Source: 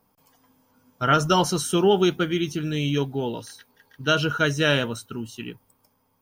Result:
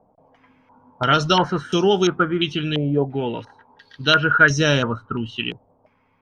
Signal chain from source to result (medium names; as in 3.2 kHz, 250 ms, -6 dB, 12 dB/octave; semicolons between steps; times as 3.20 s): 4.50–5.36 s: tilt EQ -1.5 dB/octave; in parallel at -2 dB: compression, threshold -31 dBFS, peak gain reduction 15.5 dB; on the sum: step-sequenced low-pass 2.9 Hz 670–5700 Hz